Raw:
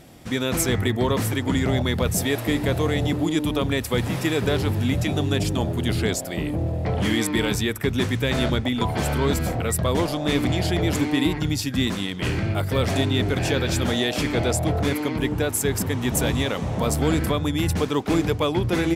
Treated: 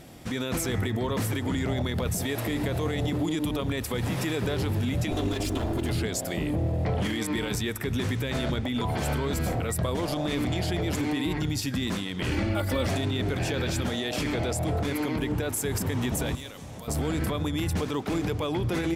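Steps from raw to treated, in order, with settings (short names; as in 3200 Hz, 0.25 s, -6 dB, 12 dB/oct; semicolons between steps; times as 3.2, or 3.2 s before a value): 5.11–5.92 minimum comb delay 2.9 ms; limiter -20 dBFS, peak gain reduction 9.5 dB; 12.31–12.87 comb 3.5 ms, depth 91%; 16.35–16.88 pre-emphasis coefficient 0.8; reverb RT60 2.2 s, pre-delay 70 ms, DRR 19.5 dB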